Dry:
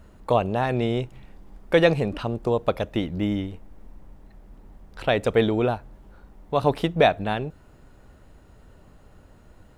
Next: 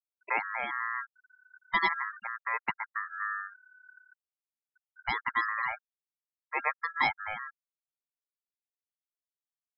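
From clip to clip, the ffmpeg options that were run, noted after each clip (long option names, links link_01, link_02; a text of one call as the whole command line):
ffmpeg -i in.wav -af "afftfilt=real='re*gte(hypot(re,im),0.126)':imag='im*gte(hypot(re,im),0.126)':win_size=1024:overlap=0.75,aeval=exprs='val(0)*sin(2*PI*1500*n/s)':channel_layout=same,volume=-7dB" out.wav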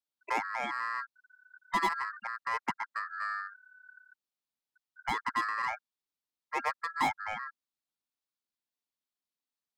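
ffmpeg -i in.wav -filter_complex "[0:a]equalizer=frequency=250:width_type=o:width=1:gain=9,equalizer=frequency=1000:width_type=o:width=1:gain=5,equalizer=frequency=4000:width_type=o:width=1:gain=7,acrossover=split=130|1100[link_01][link_02][link_03];[link_03]asoftclip=type=tanh:threshold=-30dB[link_04];[link_01][link_02][link_04]amix=inputs=3:normalize=0,volume=-2.5dB" out.wav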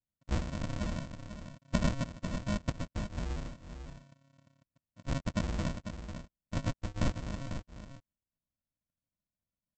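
ffmpeg -i in.wav -af "aresample=16000,acrusher=samples=39:mix=1:aa=0.000001,aresample=44100,aecho=1:1:496:0.355" out.wav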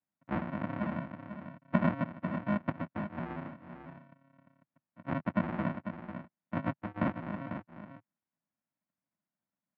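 ffmpeg -i in.wav -af "highpass=frequency=130:width=0.5412,highpass=frequency=130:width=1.3066,equalizer=frequency=130:width_type=q:width=4:gain=-9,equalizer=frequency=460:width_type=q:width=4:gain=-9,equalizer=frequency=840:width_type=q:width=4:gain=3,lowpass=frequency=2100:width=0.5412,lowpass=frequency=2100:width=1.3066,volume=5dB" out.wav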